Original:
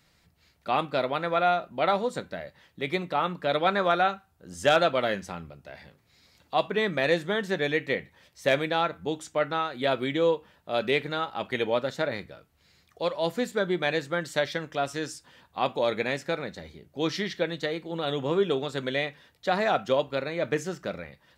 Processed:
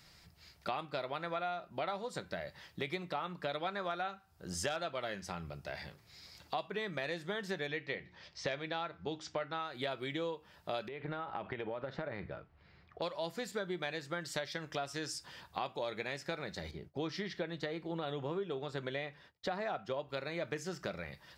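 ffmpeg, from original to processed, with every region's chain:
-filter_complex "[0:a]asettb=1/sr,asplit=3[a][b][c];[a]atrim=end=7.674[d];[b]atrim=start=7.67:end=9.6,asetpts=PTS-STARTPTS,afade=t=in:d=0.004:c=qsin,afade=t=out:st=1.926:d=0.004:c=qsin,lowpass=f=5.5k:w=0.5412,lowpass=f=5.5k:w=1.3066,bandreject=f=60:t=h:w=6,bandreject=f=120:t=h:w=6,bandreject=f=180:t=h:w=6,bandreject=f=240:t=h:w=6,bandreject=f=300:t=h:w=6,bandreject=f=360:t=h:w=6[e];[c]atrim=start=9.596[f];[d][e]acrossfade=d=0.004:c1=hsin:c2=qsin[g];[g][f]acrossfade=d=0.004:c1=qsin:c2=hsin,asettb=1/sr,asplit=3[h][i][j];[h]atrim=end=10.884[k];[i]atrim=start=10.88:end=13.02,asetpts=PTS-STARTPTS,afade=t=in:d=0.004:c=qsin,afade=t=out:st=2.136:d=0.004:c=qsin,lowpass=2.6k,acompressor=threshold=-34dB:ratio=8:attack=3.2:release=140:knee=1:detection=peak,aemphasis=mode=reproduction:type=75fm[l];[j]atrim=start=13.016[m];[k][l]acrossfade=d=0.004:c1=hsin:c2=qsin[n];[n][m]acrossfade=d=0.004:c1=qsin:c2=hsin,asettb=1/sr,asplit=3[o][p][q];[o]atrim=end=16.714[r];[p]atrim=start=16.71:end=20.09,asetpts=PTS-STARTPTS,afade=t=in:d=0.004:c=qsin,afade=t=out:st=3.376:d=0.004:c=qsin,agate=range=-33dB:threshold=-54dB:ratio=3:release=100:detection=peak,highshelf=f=3.4k:g=-11.5[s];[q]atrim=start=20.086[t];[r][s]acrossfade=d=0.004:c1=hsin:c2=qsin[u];[u][t]acrossfade=d=0.004:c1=qsin:c2=hsin,equalizer=f=250:t=o:w=0.33:g=-8,equalizer=f=500:t=o:w=0.33:g=-4,equalizer=f=5k:t=o:w=0.33:g=7,acompressor=threshold=-39dB:ratio=6,volume=3dB"

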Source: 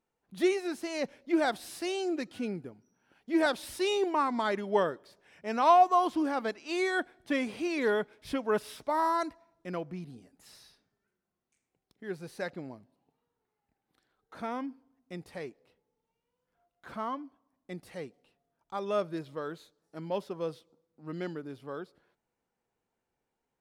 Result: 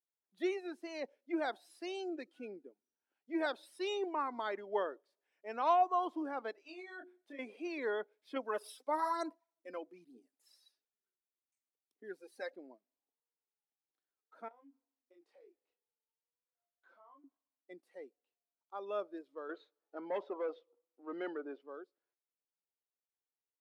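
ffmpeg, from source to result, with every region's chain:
-filter_complex "[0:a]asettb=1/sr,asplit=3[a][b][c];[a]atrim=end=6.524[d];[b]atrim=start=6.52:end=7.39,asetpts=PTS-STARTPTS,afade=t=in:d=0.004:c=qsin,afade=t=out:st=0.866:d=0.004:c=qsin,bandreject=f=60:t=h:w=6,bandreject=f=120:t=h:w=6,bandreject=f=180:t=h:w=6,bandreject=f=240:t=h:w=6,bandreject=f=300:t=h:w=6,bandreject=f=360:t=h:w=6,bandreject=f=420:t=h:w=6,acompressor=threshold=-39dB:ratio=6:attack=3.2:release=140:knee=1:detection=peak,asplit=2[e][f];[f]adelay=25,volume=-3dB[g];[e][g]amix=inputs=2:normalize=0,atrim=end_sample=38367[h];[c]atrim=start=7.386[i];[d][h]acrossfade=d=0.004:c1=hsin:c2=qsin[j];[j][i]acrossfade=d=0.004:c1=qsin:c2=hsin,asettb=1/sr,asplit=3[k][l][m];[k]atrim=end=8.364[n];[l]atrim=start=8.36:end=12.56,asetpts=PTS-STARTPTS,afade=t=in:d=0.004:c=qsin,afade=t=out:st=4.196:d=0.004:c=qsin,aemphasis=mode=production:type=cd,bandreject=f=54.44:t=h:w=4,bandreject=f=108.88:t=h:w=4,bandreject=f=163.32:t=h:w=4,aphaser=in_gain=1:out_gain=1:delay=3.9:decay=0.5:speed=1.1:type=sinusoidal[o];[m]atrim=start=12.556[p];[n][o]acrossfade=d=0.004:c1=hsin:c2=qsin[q];[q][p]acrossfade=d=0.004:c1=qsin:c2=hsin,asettb=1/sr,asplit=3[r][s][t];[r]atrim=end=14.484[u];[s]atrim=start=14.48:end=17.24,asetpts=PTS-STARTPTS,afade=t=in:d=0.004:c=qsin,afade=t=out:st=2.756:d=0.004:c=qsin,highpass=270,lowpass=6.1k,acompressor=threshold=-48dB:ratio=10:attack=3.2:release=140:knee=1:detection=peak,asplit=2[v][w];[w]adelay=29,volume=-3.5dB[x];[v][x]amix=inputs=2:normalize=0,atrim=end_sample=121716[y];[t]atrim=start=17.236[z];[u][y]acrossfade=d=0.004:c1=hsin:c2=qsin[aa];[aa][z]acrossfade=d=0.004:c1=qsin:c2=hsin,asettb=1/sr,asplit=3[ab][ac][ad];[ab]atrim=end=19.494[ae];[ac]atrim=start=19.49:end=21.62,asetpts=PTS-STARTPTS,afade=t=in:d=0.004:c=qsin,afade=t=out:st=2.126:d=0.004:c=qsin,lowpass=4.8k,asplit=2[af][ag];[ag]highpass=f=720:p=1,volume=21dB,asoftclip=type=tanh:threshold=-20dB[ah];[af][ah]amix=inputs=2:normalize=0,lowpass=f=1.7k:p=1,volume=-6dB[ai];[ad]atrim=start=21.616[aj];[ae][ai]acrossfade=d=0.004:c1=hsin:c2=qsin[ak];[ak][aj]acrossfade=d=0.004:c1=qsin:c2=hsin,highpass=f=290:w=0.5412,highpass=f=290:w=1.3066,afftdn=nr=15:nf=-42,volume=-8dB"

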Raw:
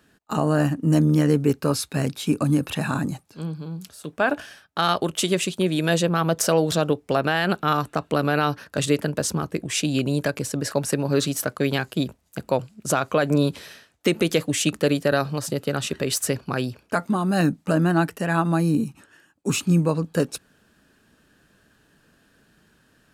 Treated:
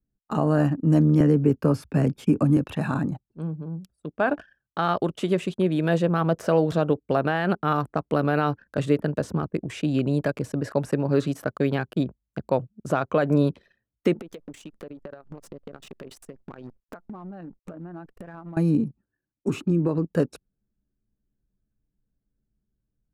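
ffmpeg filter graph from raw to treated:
-filter_complex "[0:a]asettb=1/sr,asplit=3[a][b][c];[a]atrim=end=1.204[d];[b]atrim=start=1.2:end=2.57,asetpts=PTS-STARTPTS,afade=t=in:d=0.004:c=qsin,afade=t=out:st=1.366:d=0.004:c=qsin,lowshelf=f=320:g=9.5,bandreject=f=3.9k:w=5.7,acrossover=split=140|320[e][f][g];[e]acompressor=threshold=-32dB:ratio=4[h];[f]acompressor=threshold=-22dB:ratio=4[i];[g]acompressor=threshold=-20dB:ratio=4[j];[h][i][j]amix=inputs=3:normalize=0[k];[c]atrim=start=2.566[l];[d][k]acrossfade=d=0.004:c1=hsin:c2=qsin[m];[m][l]acrossfade=d=0.004:c1=qsin:c2=hsin,asettb=1/sr,asplit=3[n][o][p];[n]atrim=end=14.194[q];[o]atrim=start=14.19:end=18.57,asetpts=PTS-STARTPTS,afade=t=in:d=0.004:c=qsin,afade=t=out:st=4.376:d=0.004:c=qsin,lowshelf=f=120:g=-11.5,acrusher=bits=6:dc=4:mix=0:aa=0.000001,acompressor=threshold=-33dB:ratio=16:attack=3.2:release=140:knee=1:detection=peak[r];[p]atrim=start=18.566[s];[q][r]acrossfade=d=0.004:c1=hsin:c2=qsin[t];[t][s]acrossfade=d=0.004:c1=qsin:c2=hsin,asettb=1/sr,asplit=3[u][v][w];[u]atrim=end=19.484[x];[v]atrim=start=19.48:end=20.07,asetpts=PTS-STARTPTS,afade=t=in:d=0.004:c=qsin,afade=t=out:st=0.586:d=0.004:c=qsin,equalizer=f=350:w=3:g=10,acompressor=threshold=-18dB:ratio=4:attack=3.2:release=140:knee=1:detection=peak[y];[w]atrim=start=20.066[z];[x][y]acrossfade=d=0.004:c1=hsin:c2=qsin[aa];[aa][z]acrossfade=d=0.004:c1=qsin:c2=hsin,anlmdn=2.51,acrossover=split=2800[ab][ac];[ac]acompressor=threshold=-33dB:ratio=4:attack=1:release=60[ad];[ab][ad]amix=inputs=2:normalize=0,highshelf=f=2.1k:g=-11"

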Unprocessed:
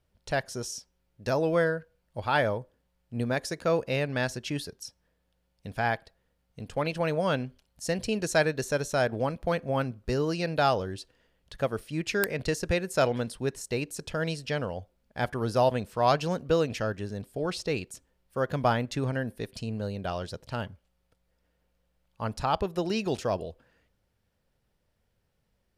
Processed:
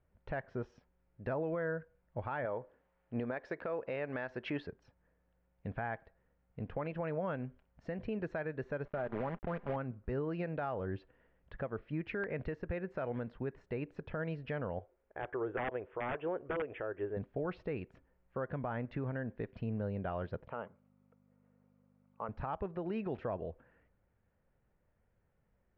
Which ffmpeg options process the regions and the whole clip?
-filter_complex "[0:a]asettb=1/sr,asplit=3[a][b][c];[a]atrim=end=2.454[d];[b]atrim=start=2.45:end=4.67,asetpts=PTS-STARTPTS,afade=t=in:d=0.004:c=qsin,afade=t=out:st=2.216:d=0.004:c=qsin,bass=f=250:g=-12,treble=f=4k:g=5,acontrast=55[e];[c]atrim=start=4.666[f];[d][e]acrossfade=d=0.004:c1=hsin:c2=qsin[g];[g][f]acrossfade=d=0.004:c1=qsin:c2=hsin,asettb=1/sr,asplit=3[h][i][j];[h]atrim=end=8.854[k];[i]atrim=start=8.85:end=9.76,asetpts=PTS-STARTPTS,afade=t=in:d=0.004:c=qsin,afade=t=out:st=0.906:d=0.004:c=qsin,lowpass=1.5k,acrusher=bits=6:dc=4:mix=0:aa=0.000001,aecho=1:1:5:0.32,atrim=end_sample=40131[l];[j]atrim=start=9.756[m];[k][l]acrossfade=d=0.004:c1=hsin:c2=qsin[n];[n][m]acrossfade=d=0.004:c1=qsin:c2=hsin,asettb=1/sr,asplit=3[o][p][q];[o]atrim=end=14.794[r];[p]atrim=start=14.79:end=17.17,asetpts=PTS-STARTPTS,afade=t=in:d=0.004:c=qsin,afade=t=out:st=2.376:d=0.004:c=qsin,lowshelf=f=280:t=q:w=3:g=-8.5,aeval=exprs='(mod(5.31*val(0)+1,2)-1)/5.31':c=same,asuperstop=centerf=4900:order=20:qfactor=1.6[s];[q]atrim=start=17.166[t];[r][s]acrossfade=d=0.004:c1=hsin:c2=qsin[u];[u][t]acrossfade=d=0.004:c1=qsin:c2=hsin,asettb=1/sr,asplit=3[v][w][x];[v]atrim=end=20.484[y];[w]atrim=start=20.48:end=22.29,asetpts=PTS-STARTPTS,afade=t=in:d=0.004:c=qsin,afade=t=out:st=1.806:d=0.004:c=qsin,aeval=exprs='val(0)+0.00251*(sin(2*PI*50*n/s)+sin(2*PI*2*50*n/s)/2+sin(2*PI*3*50*n/s)/3+sin(2*PI*4*50*n/s)/4+sin(2*PI*5*50*n/s)/5)':c=same,highpass=270,equalizer=f=300:t=q:w=4:g=-7,equalizer=f=470:t=q:w=4:g=5,equalizer=f=1.2k:t=q:w=4:g=5,equalizer=f=1.7k:t=q:w=4:g=-8,lowpass=f=2.9k:w=0.5412,lowpass=f=2.9k:w=1.3066[z];[x]atrim=start=22.286[aa];[y][z]acrossfade=d=0.004:c1=hsin:c2=qsin[ab];[ab][aa]acrossfade=d=0.004:c1=qsin:c2=hsin,lowpass=f=2.1k:w=0.5412,lowpass=f=2.1k:w=1.3066,acompressor=threshold=-26dB:ratio=5,alimiter=level_in=3dB:limit=-24dB:level=0:latency=1:release=275,volume=-3dB,volume=-1dB"

